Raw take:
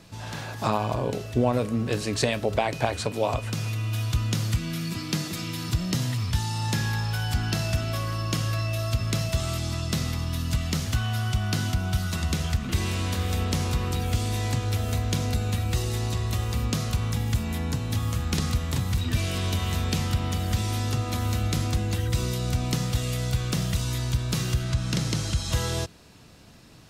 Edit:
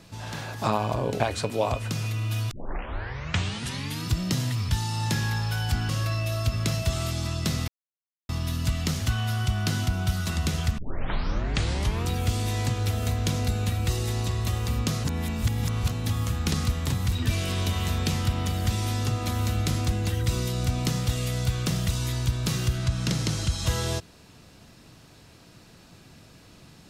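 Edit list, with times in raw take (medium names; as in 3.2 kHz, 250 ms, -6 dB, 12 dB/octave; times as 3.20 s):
1.20–2.82 s: delete
4.13 s: tape start 1.55 s
7.51–8.36 s: delete
10.15 s: insert silence 0.61 s
12.64 s: tape start 1.30 s
16.90–17.77 s: reverse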